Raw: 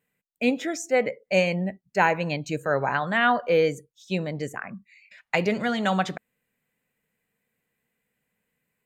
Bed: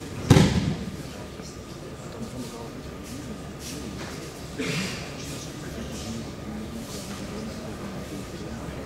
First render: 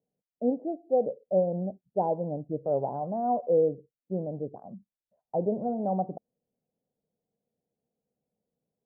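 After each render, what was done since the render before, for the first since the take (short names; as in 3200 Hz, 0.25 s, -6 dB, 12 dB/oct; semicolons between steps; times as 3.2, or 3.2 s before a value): steep low-pass 770 Hz 48 dB/oct; tilt +2 dB/oct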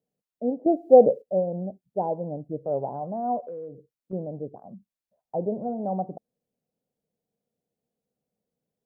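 0.66–1.22 gain +11.5 dB; 3.46–4.13 compressor, threshold -35 dBFS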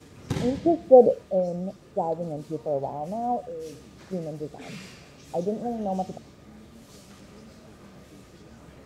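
add bed -13.5 dB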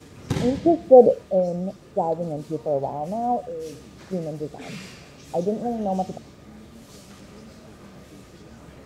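gain +3.5 dB; limiter -2 dBFS, peak gain reduction 2 dB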